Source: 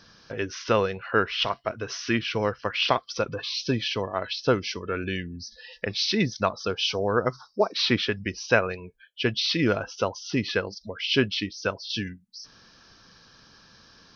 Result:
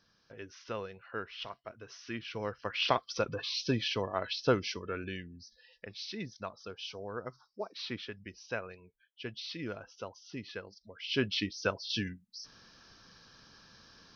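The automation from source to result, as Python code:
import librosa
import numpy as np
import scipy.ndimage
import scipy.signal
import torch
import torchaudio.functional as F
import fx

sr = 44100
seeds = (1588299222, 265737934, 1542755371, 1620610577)

y = fx.gain(x, sr, db=fx.line((2.01, -16.5), (2.96, -5.0), (4.64, -5.0), (5.7, -16.5), (10.86, -16.5), (11.37, -4.0)))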